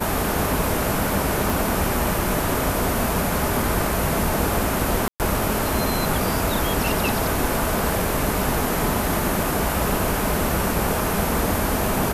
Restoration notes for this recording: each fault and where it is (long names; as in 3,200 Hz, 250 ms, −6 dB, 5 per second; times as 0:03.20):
0:01.50: click
0:05.08–0:05.20: drop-out 118 ms